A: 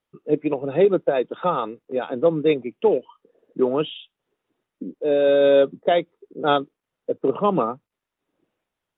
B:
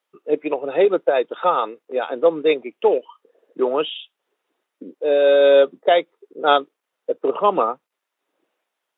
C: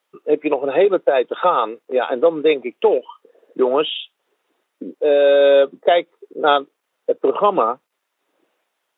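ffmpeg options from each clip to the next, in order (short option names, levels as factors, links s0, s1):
-af "highpass=470,volume=1.78"
-af "acompressor=threshold=0.1:ratio=2,volume=2"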